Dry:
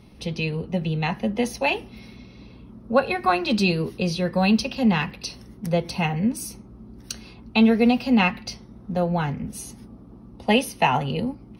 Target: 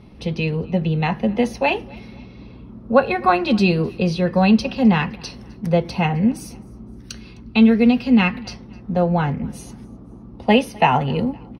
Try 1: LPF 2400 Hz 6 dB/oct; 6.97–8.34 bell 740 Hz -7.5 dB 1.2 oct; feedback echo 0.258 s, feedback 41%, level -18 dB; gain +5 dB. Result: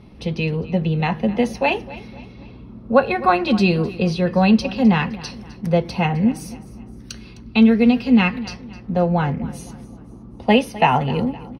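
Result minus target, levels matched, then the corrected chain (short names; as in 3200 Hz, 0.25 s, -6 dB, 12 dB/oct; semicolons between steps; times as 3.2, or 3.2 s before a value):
echo-to-direct +7 dB
LPF 2400 Hz 6 dB/oct; 6.97–8.34 bell 740 Hz -7.5 dB 1.2 oct; feedback echo 0.258 s, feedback 41%, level -25 dB; gain +5 dB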